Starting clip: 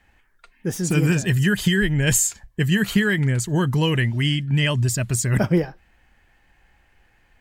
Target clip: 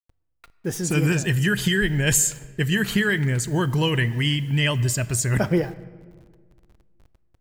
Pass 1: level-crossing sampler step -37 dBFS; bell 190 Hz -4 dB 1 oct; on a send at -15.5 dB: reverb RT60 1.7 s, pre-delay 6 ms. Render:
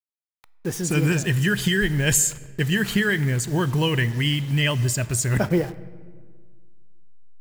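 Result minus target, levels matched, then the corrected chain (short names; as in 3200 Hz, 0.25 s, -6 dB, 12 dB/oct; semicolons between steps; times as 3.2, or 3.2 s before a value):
level-crossing sampler: distortion +13 dB
level-crossing sampler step -47.5 dBFS; bell 190 Hz -4 dB 1 oct; on a send at -15.5 dB: reverb RT60 1.7 s, pre-delay 6 ms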